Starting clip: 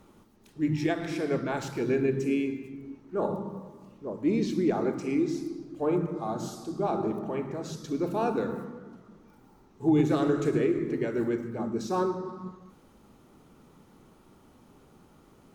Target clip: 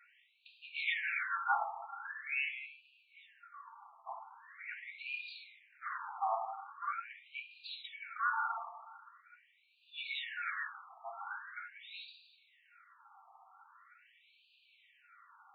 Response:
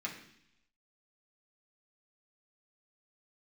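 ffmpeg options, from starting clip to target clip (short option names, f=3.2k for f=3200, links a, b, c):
-filter_complex "[0:a]equalizer=f=190:t=o:w=2.3:g=-3[a];[1:a]atrim=start_sample=2205,asetrate=48510,aresample=44100[b];[a][b]afir=irnorm=-1:irlink=0,asplit=3[c][d][e];[c]afade=t=out:st=4.45:d=0.02[f];[d]acompressor=threshold=-26dB:ratio=6,afade=t=in:st=4.45:d=0.02,afade=t=out:st=5.13:d=0.02[g];[e]afade=t=in:st=5.13:d=0.02[h];[f][g][h]amix=inputs=3:normalize=0,asettb=1/sr,asplit=3[i][j][k];[i]atrim=end=5.694[l];[j]atrim=start=5.69:end=6.52,asetpts=PTS-STARTPTS,afade=t=in:d=0.004:c=qsin,afade=t=out:st=0.826:d=0.004:c=qsin,aeval=exprs='clip(val(0),-1,0.01)':c=same[m];[k]atrim=start=6.516[n];[l][m]acrossfade=d=0.004:c1=hsin:c2=qsin[o];[o][n]acrossfade=d=0.004:c1=qsin:c2=hsin,afftfilt=real='re*between(b*sr/1024,930*pow(3400/930,0.5+0.5*sin(2*PI*0.43*pts/sr))/1.41,930*pow(3400/930,0.5+0.5*sin(2*PI*0.43*pts/sr))*1.41)':imag='im*between(b*sr/1024,930*pow(3400/930,0.5+0.5*sin(2*PI*0.43*pts/sr))/1.41,930*pow(3400/930,0.5+0.5*sin(2*PI*0.43*pts/sr))*1.41)':win_size=1024:overlap=0.75,volume=6.5dB"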